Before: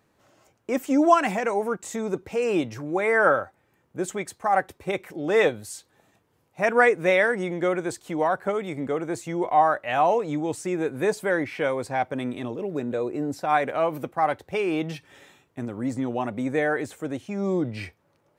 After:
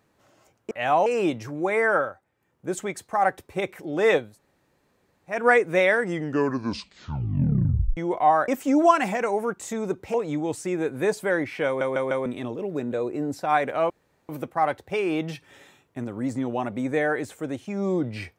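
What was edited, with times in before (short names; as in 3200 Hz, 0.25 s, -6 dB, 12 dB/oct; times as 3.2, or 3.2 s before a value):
0.71–2.37 swap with 9.79–10.14
3.09–4.03 dip -8 dB, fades 0.35 s
5.58–6.66 room tone, crossfade 0.24 s
7.31 tape stop 1.97 s
11.66 stutter in place 0.15 s, 4 plays
13.9 insert room tone 0.39 s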